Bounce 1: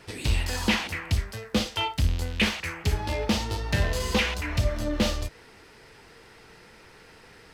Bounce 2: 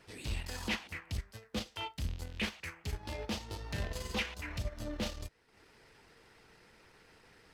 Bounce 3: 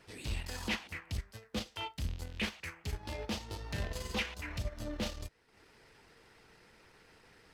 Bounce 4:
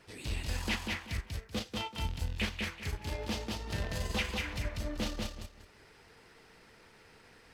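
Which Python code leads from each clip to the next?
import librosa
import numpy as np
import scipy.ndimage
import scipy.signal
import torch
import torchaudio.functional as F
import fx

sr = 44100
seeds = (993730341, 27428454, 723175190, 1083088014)

y1 = fx.hpss(x, sr, part='harmonic', gain_db=-4)
y1 = fx.transient(y1, sr, attack_db=-6, sustain_db=-10)
y1 = y1 * librosa.db_to_amplitude(-7.5)
y2 = y1
y3 = fx.echo_feedback(y2, sr, ms=191, feedback_pct=23, wet_db=-3.0)
y3 = y3 * librosa.db_to_amplitude(1.0)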